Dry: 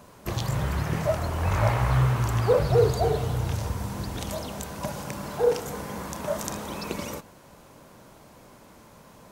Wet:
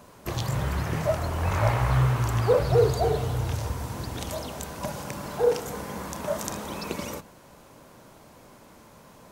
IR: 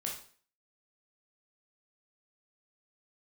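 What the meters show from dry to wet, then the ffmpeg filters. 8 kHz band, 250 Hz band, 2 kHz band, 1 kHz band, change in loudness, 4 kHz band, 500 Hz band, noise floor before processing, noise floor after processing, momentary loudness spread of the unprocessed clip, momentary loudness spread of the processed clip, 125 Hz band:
0.0 dB, -1.0 dB, 0.0 dB, 0.0 dB, 0.0 dB, 0.0 dB, 0.0 dB, -52 dBFS, -52 dBFS, 12 LU, 12 LU, -0.5 dB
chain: -af "bandreject=f=50:t=h:w=6,bandreject=f=100:t=h:w=6,bandreject=f=150:t=h:w=6,bandreject=f=200:t=h:w=6"

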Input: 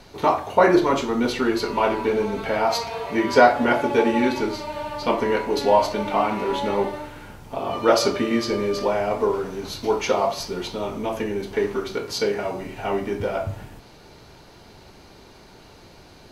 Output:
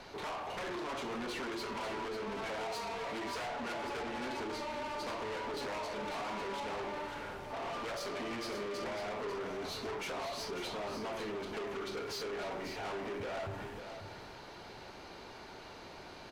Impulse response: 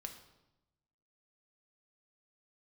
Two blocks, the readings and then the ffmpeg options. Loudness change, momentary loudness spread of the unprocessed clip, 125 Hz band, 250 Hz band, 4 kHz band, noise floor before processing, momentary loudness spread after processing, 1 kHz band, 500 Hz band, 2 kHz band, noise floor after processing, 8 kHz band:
-17.5 dB, 11 LU, -15.5 dB, -19.0 dB, -11.5 dB, -48 dBFS, 11 LU, -16.5 dB, -18.0 dB, -13.5 dB, -50 dBFS, -13.0 dB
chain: -filter_complex "[0:a]acompressor=threshold=-23dB:ratio=3,aeval=exprs='0.0841*(abs(mod(val(0)/0.0841+3,4)-2)-1)':c=same,asplit=2[a][b];[b]highpass=f=720:p=1,volume=11dB,asoftclip=type=tanh:threshold=-21.5dB[c];[a][c]amix=inputs=2:normalize=0,lowpass=f=2.4k:p=1,volume=-6dB,asoftclip=type=tanh:threshold=-34dB,asplit=2[d][e];[e]aecho=0:1:545:0.398[f];[d][f]amix=inputs=2:normalize=0,volume=-4dB"

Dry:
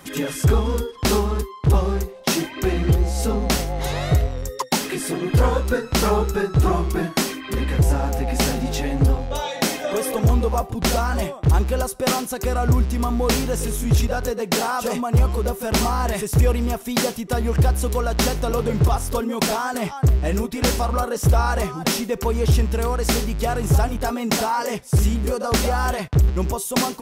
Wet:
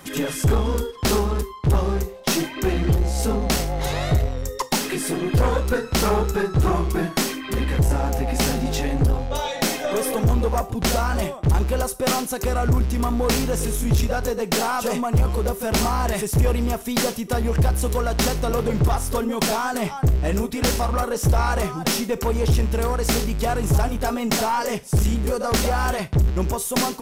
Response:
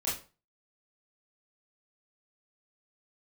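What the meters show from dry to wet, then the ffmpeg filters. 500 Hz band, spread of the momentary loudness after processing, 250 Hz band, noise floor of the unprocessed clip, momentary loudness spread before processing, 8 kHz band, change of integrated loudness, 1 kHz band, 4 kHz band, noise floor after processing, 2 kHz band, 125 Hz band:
-0.5 dB, 3 LU, -0.5 dB, -36 dBFS, 5 LU, 0.0 dB, -1.0 dB, -0.5 dB, -0.5 dB, -35 dBFS, -0.5 dB, -1.5 dB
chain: -filter_complex "[0:a]asplit=2[a][b];[1:a]atrim=start_sample=2205,highshelf=f=5k:g=8.5[c];[b][c]afir=irnorm=-1:irlink=0,volume=-23.5dB[d];[a][d]amix=inputs=2:normalize=0,aeval=exprs='0.422*(cos(1*acos(clip(val(0)/0.422,-1,1)))-cos(1*PI/2))+0.0376*(cos(4*acos(clip(val(0)/0.422,-1,1)))-cos(4*PI/2))+0.0335*(cos(5*acos(clip(val(0)/0.422,-1,1)))-cos(5*PI/2))':c=same,volume=-2.5dB"

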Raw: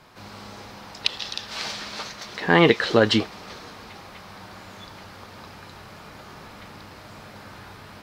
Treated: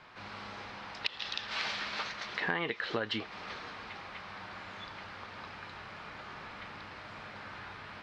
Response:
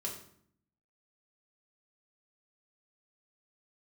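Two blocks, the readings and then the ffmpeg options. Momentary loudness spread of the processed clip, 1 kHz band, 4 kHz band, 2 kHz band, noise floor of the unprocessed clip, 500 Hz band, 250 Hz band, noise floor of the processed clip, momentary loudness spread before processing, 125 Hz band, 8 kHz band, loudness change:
12 LU, -10.0 dB, -10.0 dB, -8.5 dB, -44 dBFS, -17.5 dB, -18.5 dB, -48 dBFS, 25 LU, -17.5 dB, -14.5 dB, -16.5 dB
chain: -af "lowpass=2.2k,tiltshelf=f=1.3k:g=-8,acompressor=threshold=-30dB:ratio=8"

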